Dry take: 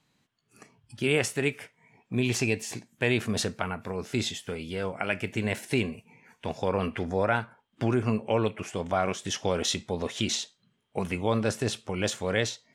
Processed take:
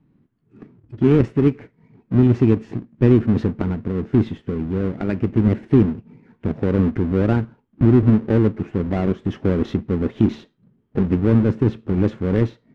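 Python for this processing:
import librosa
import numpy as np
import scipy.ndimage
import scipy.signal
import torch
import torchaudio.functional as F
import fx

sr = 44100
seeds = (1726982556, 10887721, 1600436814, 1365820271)

y = fx.halfwave_hold(x, sr)
y = scipy.signal.sosfilt(scipy.signal.butter(2, 1700.0, 'lowpass', fs=sr, output='sos'), y)
y = fx.low_shelf_res(y, sr, hz=460.0, db=10.5, q=1.5)
y = y * librosa.db_to_amplitude(-3.0)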